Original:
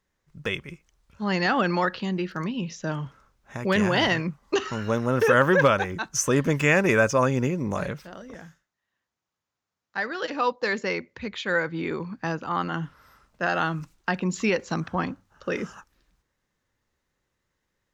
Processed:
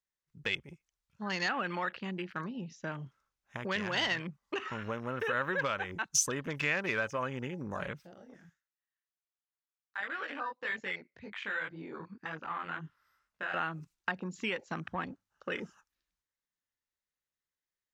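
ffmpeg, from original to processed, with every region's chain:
-filter_complex "[0:a]asettb=1/sr,asplit=3[a][b][c];[a]atrim=end=8.144[d];[b]atrim=start=8.14:end=13.54,asetpts=PTS-STARTPTS,afade=t=in:d=0.004:c=qsin,afade=t=out:st=5.396:d=0.004:c=qsin,equalizer=f=1.6k:t=o:w=1.4:g=5.5,acompressor=threshold=-28dB:ratio=3:attack=3.2:release=140:knee=1:detection=peak,flanger=delay=19:depth=6.7:speed=1.9[e];[c]atrim=start=13.536[f];[d][e]acrossfade=d=0.004:c1=hsin:c2=qsin[g];[g][f]acrossfade=d=0.004:c1=qsin:c2=hsin,afwtdn=0.0158,acompressor=threshold=-27dB:ratio=3,tiltshelf=f=1.1k:g=-6,volume=-3.5dB"

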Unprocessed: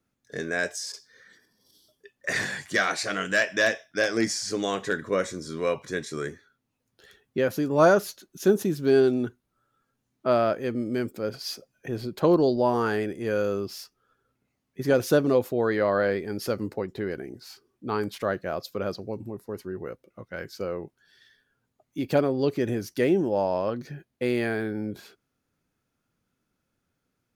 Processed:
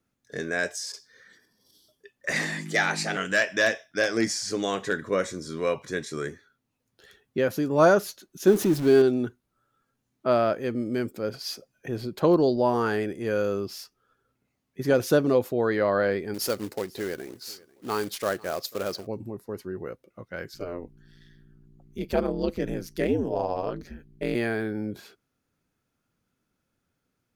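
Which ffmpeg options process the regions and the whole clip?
-filter_complex "[0:a]asettb=1/sr,asplit=3[a][b][c];[a]atrim=end=2.324[d];[b]atrim=start=2.32:end=3.17,asetpts=PTS-STARTPTS,afade=t=in:d=0.004:c=qsin,afade=t=out:st=0.846:d=0.004:c=qsin,aeval=exprs='val(0)+0.0158*(sin(2*PI*50*n/s)+sin(2*PI*2*50*n/s)/2+sin(2*PI*3*50*n/s)/3+sin(2*PI*4*50*n/s)/4+sin(2*PI*5*50*n/s)/5)':c=same,afreqshift=110[e];[c]atrim=start=3.166[f];[d][e]acrossfade=d=0.004:c1=hsin:c2=qsin[g];[g][f]acrossfade=d=0.004:c1=qsin:c2=hsin,asettb=1/sr,asplit=3[h][i][j];[h]atrim=end=8.474[k];[i]atrim=start=8.47:end=9.02,asetpts=PTS-STARTPTS,afade=t=in:d=0.004:c=qsin,afade=t=out:st=0.546:d=0.004:c=qsin,aeval=exprs='val(0)+0.5*0.0282*sgn(val(0))':c=same,equalizer=f=320:w=5.6:g=6.5[l];[j]atrim=start=9.016[m];[k][l]acrossfade=d=0.004:c1=hsin:c2=qsin[n];[n][m]acrossfade=d=0.004:c1=qsin:c2=hsin,asettb=1/sr,asplit=3[o][p][q];[o]atrim=end=16.344[r];[p]atrim=start=16.34:end=19.07,asetpts=PTS-STARTPTS,afade=t=in:d=0.004:c=qsin,afade=t=out:st=2.726:d=0.004:c=qsin,bass=f=250:g=-6,treble=f=4k:g=9,acrusher=bits=3:mode=log:mix=0:aa=0.000001,aecho=1:1:494|988:0.0708|0.0191,atrim=end_sample=120393[s];[q]atrim=start=19.066[t];[r][s]acrossfade=d=0.004:c1=hsin:c2=qsin[u];[u][t]acrossfade=d=0.004:c1=qsin:c2=hsin,asettb=1/sr,asplit=3[v][w][x];[v]atrim=end=20.544[y];[w]atrim=start=20.54:end=24.35,asetpts=PTS-STARTPTS,afade=t=in:d=0.004:c=qsin,afade=t=out:st=3.806:d=0.004:c=qsin,aeval=exprs='val(0)+0.00316*(sin(2*PI*60*n/s)+sin(2*PI*2*60*n/s)/2+sin(2*PI*3*60*n/s)/3+sin(2*PI*4*60*n/s)/4+sin(2*PI*5*60*n/s)/5)':c=same,aeval=exprs='val(0)*sin(2*PI*85*n/s)':c=same[z];[x]atrim=start=24.346[aa];[y][z]acrossfade=d=0.004:c1=hsin:c2=qsin[ab];[ab][aa]acrossfade=d=0.004:c1=qsin:c2=hsin"

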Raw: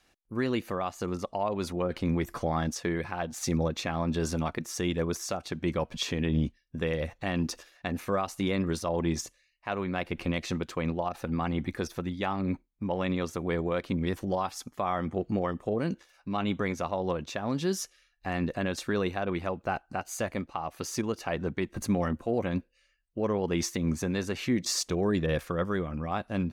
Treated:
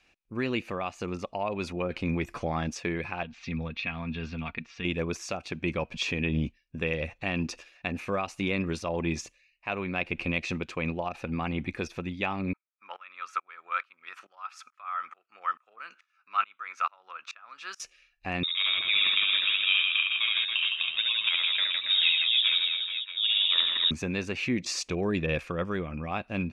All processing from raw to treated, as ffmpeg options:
-filter_complex "[0:a]asettb=1/sr,asplit=3[a][b][c];[a]atrim=end=3.234[d];[b]atrim=start=3.23:end=4.85,asetpts=PTS-STARTPTS,afade=t=in:d=0.004:c=qsin,afade=t=out:st=1.616:d=0.004:c=qsin,lowpass=f=3.8k:w=0.5412,lowpass=f=3.8k:w=1.3066,equalizer=f=510:t=o:w=2.1:g=-11.5,aecho=1:1:4.3:0.41,atrim=end_sample=71442[e];[c]atrim=start=4.846[f];[d][e]acrossfade=d=0.004:c1=hsin:c2=qsin[g];[g][f]acrossfade=d=0.004:c1=qsin:c2=hsin,asettb=1/sr,asplit=3[h][i][j];[h]atrim=end=12.534[k];[i]atrim=start=12.53:end=17.8,asetpts=PTS-STARTPTS,afade=t=in:d=0.004:c=qsin,afade=t=out:st=5.266:d=0.004:c=qsin,highpass=f=1.3k:t=q:w=9.2,aeval=exprs='val(0)*pow(10,-26*if(lt(mod(-2.3*n/s,1),2*abs(-2.3)/1000),1-mod(-2.3*n/s,1)/(2*abs(-2.3)/1000),(mod(-2.3*n/s,1)-2*abs(-2.3)/1000)/(1-2*abs(-2.3)/1000))/20)':c=same[l];[j]atrim=start=17.796[m];[k][l]acrossfade=d=0.004:c1=hsin:c2=qsin[n];[n][m]acrossfade=d=0.004:c1=qsin:c2=hsin,asettb=1/sr,asplit=3[o][p][q];[o]atrim=end=18.434[r];[p]atrim=start=18.43:end=23.91,asetpts=PTS-STARTPTS,afade=t=in:d=0.004:c=qsin,afade=t=out:st=5.476:d=0.004:c=qsin,aecho=1:1:70|161|279.3|433.1|633|892.9:0.794|0.631|0.501|0.398|0.316|0.251,atrim=end_sample=241668,lowpass=f=3.3k:t=q:w=0.5098,lowpass=f=3.3k:t=q:w=0.6013,lowpass=f=3.3k:t=q:w=0.9,lowpass=f=3.3k:t=q:w=2.563,afreqshift=-3900[s];[q]atrim=start=23.906[t];[r][s]acrossfade=d=0.004:c1=hsin:c2=qsin[u];[u][t]acrossfade=d=0.004:c1=qsin:c2=hsin,lowpass=7.1k,equalizer=f=2.5k:w=4.7:g=14,volume=-1.5dB"

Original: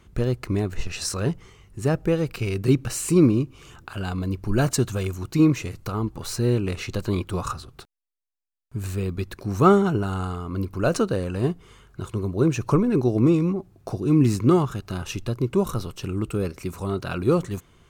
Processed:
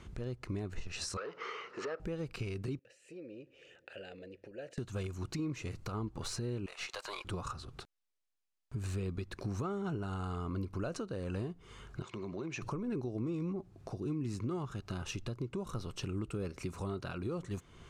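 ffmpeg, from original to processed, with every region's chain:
-filter_complex "[0:a]asettb=1/sr,asplit=3[a][b][c];[a]atrim=end=1.174[d];[b]atrim=start=1.17:end=2,asetpts=PTS-STARTPTS,afade=t=in:d=0.004:c=qsin,afade=t=out:st=0.826:d=0.004:c=qsin,acompressor=threshold=-31dB:ratio=6:attack=3.2:release=140:knee=1:detection=peak,asplit=2[e][f];[f]highpass=f=720:p=1,volume=19dB,asoftclip=type=tanh:threshold=-24dB[g];[e][g]amix=inputs=2:normalize=0,lowpass=f=3.3k:p=1,volume=-6dB,highpass=440,equalizer=f=460:t=q:w=4:g=10,equalizer=f=750:t=q:w=4:g=-6,equalizer=f=1.3k:t=q:w=4:g=9,equalizer=f=3.5k:t=q:w=4:g=-6,lowpass=f=5.1k:w=0.5412,lowpass=f=5.1k:w=1.3066[h];[c]atrim=start=1.996[i];[d][h]acrossfade=d=0.004:c1=hsin:c2=qsin[j];[j][i]acrossfade=d=0.004:c1=qsin:c2=hsin,asettb=1/sr,asplit=3[k][l][m];[k]atrim=end=2.794[n];[l]atrim=start=2.79:end=4.78,asetpts=PTS-STARTPTS,afade=t=in:d=0.004:c=qsin,afade=t=out:st=1.986:d=0.004:c=qsin,highshelf=f=6.3k:g=11,acompressor=threshold=-27dB:ratio=20:attack=3.2:release=140:knee=1:detection=peak,asplit=3[o][p][q];[o]bandpass=f=530:t=q:w=8,volume=0dB[r];[p]bandpass=f=1.84k:t=q:w=8,volume=-6dB[s];[q]bandpass=f=2.48k:t=q:w=8,volume=-9dB[t];[r][s][t]amix=inputs=3:normalize=0[u];[m]atrim=start=4.776[v];[n][u]acrossfade=d=0.004:c1=hsin:c2=qsin[w];[w][v]acrossfade=d=0.004:c1=qsin:c2=hsin,asettb=1/sr,asplit=3[x][y][z];[x]atrim=end=6.664[aa];[y]atrim=start=6.66:end=7.25,asetpts=PTS-STARTPTS,afade=t=in:d=0.004:c=qsin,afade=t=out:st=0.586:d=0.004:c=qsin,highpass=f=670:w=0.5412,highpass=f=670:w=1.3066,aeval=exprs='(tanh(28.2*val(0)+0.4)-tanh(0.4))/28.2':c=same[ab];[z]atrim=start=7.246[ac];[aa][ab]acrossfade=d=0.004:c1=hsin:c2=qsin[ad];[ad][ac]acrossfade=d=0.004:c1=qsin:c2=hsin,asettb=1/sr,asplit=3[ae][af][ag];[ae]atrim=end=12.024[ah];[af]atrim=start=12.02:end=12.62,asetpts=PTS-STARTPTS,afade=t=in:d=0.004:c=qsin,afade=t=out:st=0.596:d=0.004:c=qsin,highpass=230,equalizer=f=280:t=q:w=4:g=-5,equalizer=f=470:t=q:w=4:g=-7,equalizer=f=1.4k:t=q:w=4:g=-4,equalizer=f=2.2k:t=q:w=4:g=8,lowpass=f=6.8k:w=0.5412,lowpass=f=6.8k:w=1.3066,acompressor=threshold=-35dB:ratio=4:attack=3.2:release=140:knee=1:detection=peak[ai];[ag]atrim=start=12.616[aj];[ah][ai]acrossfade=d=0.004:c1=hsin:c2=qsin[ak];[ak][aj]acrossfade=d=0.004:c1=qsin:c2=hsin,lowpass=8.3k,acompressor=threshold=-41dB:ratio=2.5,alimiter=level_in=7dB:limit=-24dB:level=0:latency=1:release=217,volume=-7dB,volume=2dB"

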